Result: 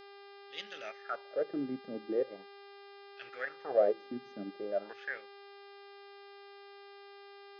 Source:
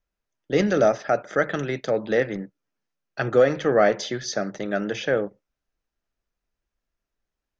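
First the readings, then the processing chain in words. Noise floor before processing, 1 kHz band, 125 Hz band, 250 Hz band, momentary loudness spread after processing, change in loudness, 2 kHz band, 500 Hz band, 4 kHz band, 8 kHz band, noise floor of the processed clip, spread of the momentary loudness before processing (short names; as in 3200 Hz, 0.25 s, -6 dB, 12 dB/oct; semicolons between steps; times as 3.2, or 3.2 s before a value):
under -85 dBFS, -14.5 dB, under -25 dB, -14.5 dB, 20 LU, -13.5 dB, -14.5 dB, -13.0 dB, -13.0 dB, n/a, -53 dBFS, 10 LU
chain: transient shaper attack -7 dB, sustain -11 dB; wah 0.41 Hz 240–3300 Hz, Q 5.6; buzz 400 Hz, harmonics 13, -53 dBFS -5 dB/oct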